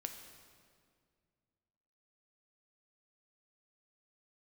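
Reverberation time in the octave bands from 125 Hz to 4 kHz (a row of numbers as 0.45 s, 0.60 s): 2.8 s, 2.6 s, 2.2 s, 1.9 s, 1.7 s, 1.6 s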